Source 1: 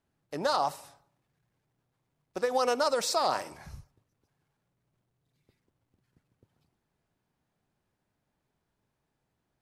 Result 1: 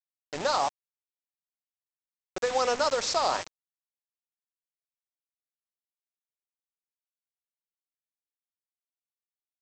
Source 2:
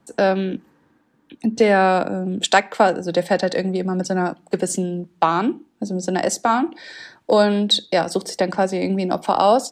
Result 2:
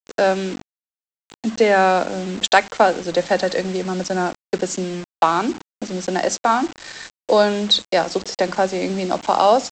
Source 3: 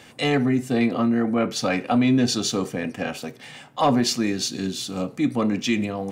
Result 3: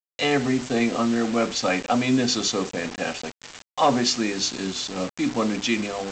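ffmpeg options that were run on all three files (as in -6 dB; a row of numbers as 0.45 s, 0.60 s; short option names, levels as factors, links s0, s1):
-af "lowshelf=f=170:g=-10,bandreject=f=50:t=h:w=6,bandreject=f=100:t=h:w=6,bandreject=f=150:t=h:w=6,bandreject=f=200:t=h:w=6,bandreject=f=250:t=h:w=6,bandreject=f=300:t=h:w=6,aresample=16000,acrusher=bits=5:mix=0:aa=0.000001,aresample=44100,volume=1.19"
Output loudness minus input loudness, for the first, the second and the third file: +1.0 LU, +0.5 LU, -1.0 LU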